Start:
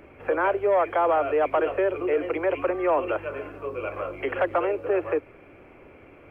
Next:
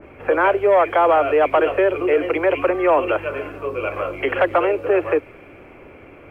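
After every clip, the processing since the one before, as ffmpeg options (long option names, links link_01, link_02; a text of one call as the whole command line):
ffmpeg -i in.wav -af "adynamicequalizer=threshold=0.00891:dfrequency=2200:dqfactor=0.7:tfrequency=2200:tqfactor=0.7:attack=5:release=100:ratio=0.375:range=2.5:mode=boostabove:tftype=highshelf,volume=6.5dB" out.wav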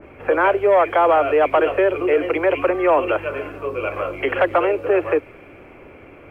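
ffmpeg -i in.wav -af anull out.wav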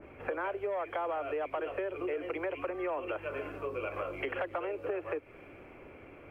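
ffmpeg -i in.wav -af "acompressor=threshold=-24dB:ratio=6,volume=-8.5dB" out.wav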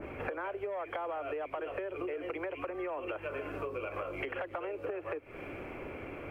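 ffmpeg -i in.wav -af "acompressor=threshold=-44dB:ratio=6,volume=8.5dB" out.wav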